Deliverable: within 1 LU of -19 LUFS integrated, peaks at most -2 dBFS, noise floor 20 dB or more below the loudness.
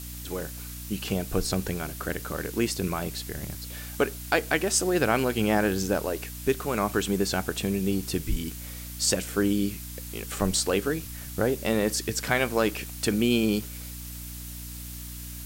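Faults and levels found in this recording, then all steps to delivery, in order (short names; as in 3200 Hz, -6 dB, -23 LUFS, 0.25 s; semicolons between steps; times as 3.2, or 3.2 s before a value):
hum 60 Hz; harmonics up to 300 Hz; hum level -38 dBFS; noise floor -39 dBFS; noise floor target -48 dBFS; loudness -28.0 LUFS; peak -8.0 dBFS; loudness target -19.0 LUFS
-> de-hum 60 Hz, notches 5; denoiser 9 dB, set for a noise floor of -39 dBFS; gain +9 dB; limiter -2 dBFS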